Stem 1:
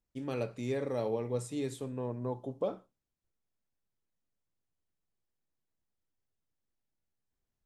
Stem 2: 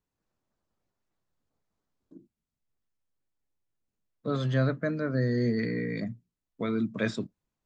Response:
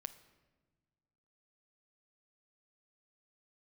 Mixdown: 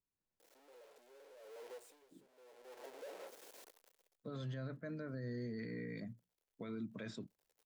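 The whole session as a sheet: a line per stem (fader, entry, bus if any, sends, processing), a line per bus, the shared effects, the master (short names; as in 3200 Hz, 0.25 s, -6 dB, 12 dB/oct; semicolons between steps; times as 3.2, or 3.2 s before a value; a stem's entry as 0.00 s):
1.34 s -15 dB -> 1.72 s -3.5 dB, 0.40 s, no send, infinite clipping; ladder high-pass 400 Hz, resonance 50%; auto duck -21 dB, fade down 0.40 s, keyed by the second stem
-12.0 dB, 0.00 s, no send, dry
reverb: off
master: notch 1200 Hz, Q 13; limiter -36.5 dBFS, peak gain reduction 9 dB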